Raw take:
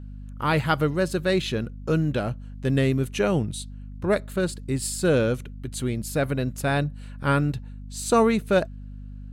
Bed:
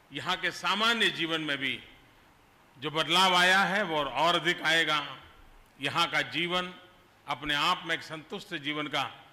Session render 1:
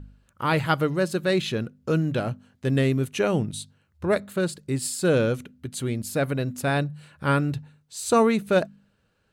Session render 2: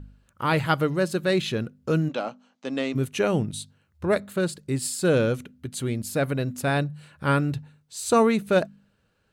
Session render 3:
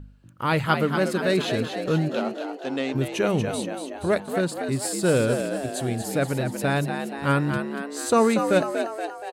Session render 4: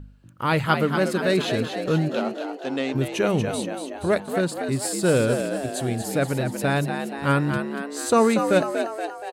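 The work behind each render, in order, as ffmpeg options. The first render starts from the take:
-af "bandreject=f=50:t=h:w=4,bandreject=f=100:t=h:w=4,bandreject=f=150:t=h:w=4,bandreject=f=200:t=h:w=4,bandreject=f=250:t=h:w=4"
-filter_complex "[0:a]asplit=3[a][b][c];[a]afade=t=out:st=2.08:d=0.02[d];[b]highpass=f=260:w=0.5412,highpass=f=260:w=1.3066,equalizer=f=380:t=q:w=4:g=-10,equalizer=f=820:t=q:w=4:g=4,equalizer=f=1.2k:t=q:w=4:g=3,equalizer=f=1.7k:t=q:w=4:g=-7,equalizer=f=6.2k:t=q:w=4:g=3,lowpass=f=7k:w=0.5412,lowpass=f=7k:w=1.3066,afade=t=in:st=2.08:d=0.02,afade=t=out:st=2.94:d=0.02[e];[c]afade=t=in:st=2.94:d=0.02[f];[d][e][f]amix=inputs=3:normalize=0"
-filter_complex "[0:a]asplit=8[a][b][c][d][e][f][g][h];[b]adelay=237,afreqshift=70,volume=-7dB[i];[c]adelay=474,afreqshift=140,volume=-11.7dB[j];[d]adelay=711,afreqshift=210,volume=-16.5dB[k];[e]adelay=948,afreqshift=280,volume=-21.2dB[l];[f]adelay=1185,afreqshift=350,volume=-25.9dB[m];[g]adelay=1422,afreqshift=420,volume=-30.7dB[n];[h]adelay=1659,afreqshift=490,volume=-35.4dB[o];[a][i][j][k][l][m][n][o]amix=inputs=8:normalize=0"
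-af "volume=1dB"

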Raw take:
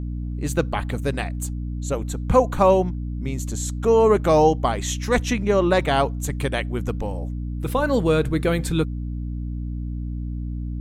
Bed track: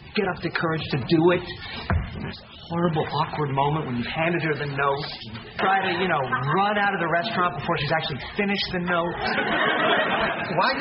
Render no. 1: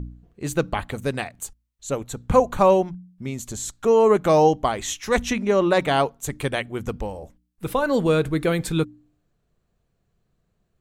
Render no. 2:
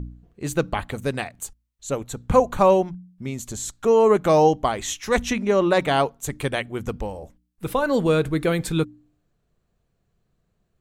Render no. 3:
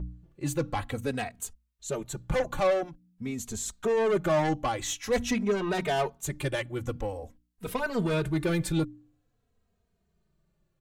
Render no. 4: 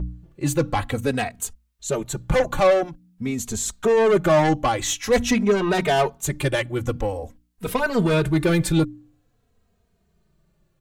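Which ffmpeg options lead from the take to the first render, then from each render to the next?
-af "bandreject=f=60:t=h:w=4,bandreject=f=120:t=h:w=4,bandreject=f=180:t=h:w=4,bandreject=f=240:t=h:w=4,bandreject=f=300:t=h:w=4"
-af anull
-filter_complex "[0:a]asoftclip=type=tanh:threshold=-19dB,asplit=2[a][b];[b]adelay=2.9,afreqshift=-0.48[c];[a][c]amix=inputs=2:normalize=1"
-af "volume=8dB"

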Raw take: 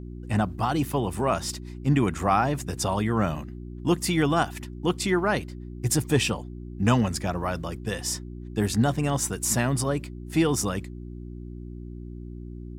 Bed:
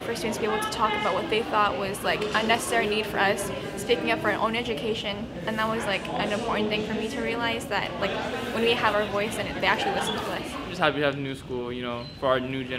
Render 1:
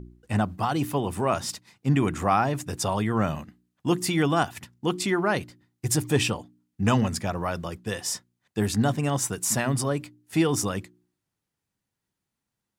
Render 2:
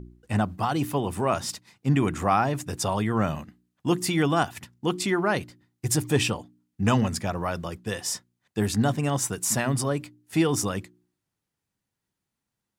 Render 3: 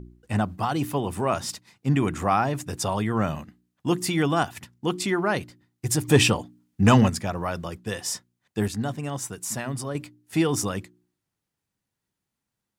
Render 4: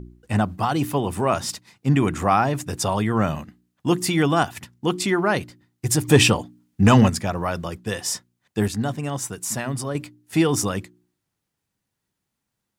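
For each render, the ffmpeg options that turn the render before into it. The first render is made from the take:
-af "bandreject=f=60:t=h:w=4,bandreject=f=120:t=h:w=4,bandreject=f=180:t=h:w=4,bandreject=f=240:t=h:w=4,bandreject=f=300:t=h:w=4,bandreject=f=360:t=h:w=4"
-af anull
-filter_complex "[0:a]asettb=1/sr,asplit=3[a][b][c];[a]atrim=end=6.084[d];[b]atrim=start=6.08:end=7.1,asetpts=PTS-STARTPTS,afade=t=in:d=0.004:c=qsin,afade=t=out:st=1.016:d=0.004:c=qsin,acontrast=50[e];[c]atrim=start=7.096[f];[d][e]acrossfade=d=0.004:c1=hsin:c2=qsin[g];[g][f]acrossfade=d=0.004:c1=qsin:c2=hsin,asplit=3[h][i][j];[h]atrim=end=8.682[k];[i]atrim=start=8.678:end=9.952,asetpts=PTS-STARTPTS,volume=-5.5dB[l];[j]atrim=start=9.948[m];[k][l]acrossfade=d=0.004:c1=hsin:c2=hsin[n];[n][m]acrossfade=d=0.004:c1=hsin:c2=hsin"
-af "volume=3.5dB,alimiter=limit=-3dB:level=0:latency=1"

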